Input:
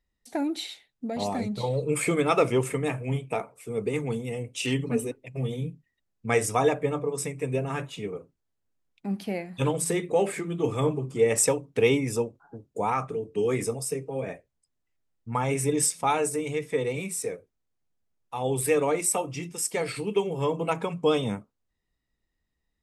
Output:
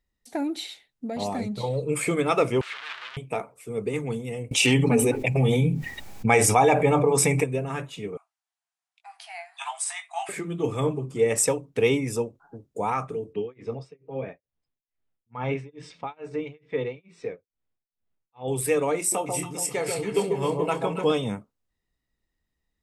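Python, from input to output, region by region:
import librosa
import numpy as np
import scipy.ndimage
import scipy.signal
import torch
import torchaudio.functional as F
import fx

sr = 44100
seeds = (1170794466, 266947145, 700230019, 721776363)

y = fx.chain(x, sr, fx.clip_1bit(),
    fx.cheby1_bandpass(low_hz=1300.0, high_hz=3500.0, order=2), at=(2.61, 3.17))
y = fx.chain(y, sr, fx.small_body(hz=(820.0, 2300.0), ring_ms=25, db=11),
    fx.env_flatten(amount_pct=70), at=(4.51, 7.44))
y = fx.chain(y, sr, fx.brickwall_bandpass(low_hz=650.0, high_hz=11000.0),
    fx.doubler(ms=19.0, db=-8.0), at=(8.17, 10.29))
y = fx.chain(y, sr, fx.lowpass(hz=3800.0, slope=24),
    fx.tremolo(hz=2.3, depth=0.99), at=(13.33, 18.48))
y = fx.chain(y, sr, fx.doubler(ms=27.0, db=-11),
    fx.echo_alternate(ms=140, hz=1000.0, feedback_pct=64, wet_db=-3), at=(18.98, 21.12))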